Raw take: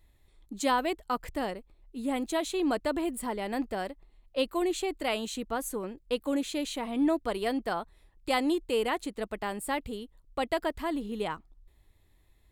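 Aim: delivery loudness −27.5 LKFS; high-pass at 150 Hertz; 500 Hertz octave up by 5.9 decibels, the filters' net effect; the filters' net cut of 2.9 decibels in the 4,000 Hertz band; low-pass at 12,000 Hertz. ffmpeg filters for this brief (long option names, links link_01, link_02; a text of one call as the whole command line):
ffmpeg -i in.wav -af "highpass=150,lowpass=12000,equalizer=frequency=500:width_type=o:gain=7.5,equalizer=frequency=4000:width_type=o:gain=-4,volume=1dB" out.wav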